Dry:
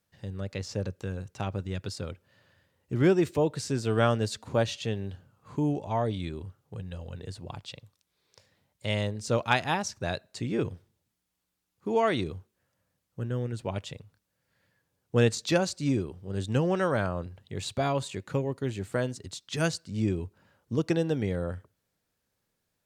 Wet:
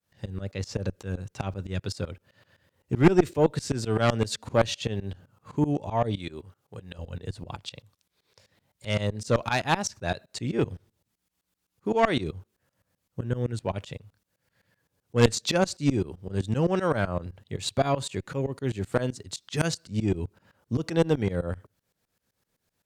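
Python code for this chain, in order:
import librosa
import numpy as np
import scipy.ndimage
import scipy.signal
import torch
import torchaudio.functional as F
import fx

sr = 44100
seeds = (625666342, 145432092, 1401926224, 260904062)

y = fx.tremolo_shape(x, sr, shape='saw_up', hz=7.8, depth_pct=95)
y = fx.cheby_harmonics(y, sr, harmonics=(4, 6), levels_db=(-9, -16), full_scale_db=-12.0)
y = fx.low_shelf(y, sr, hz=230.0, db=-10.0, at=(6.18, 6.99))
y = y * librosa.db_to_amplitude(7.0)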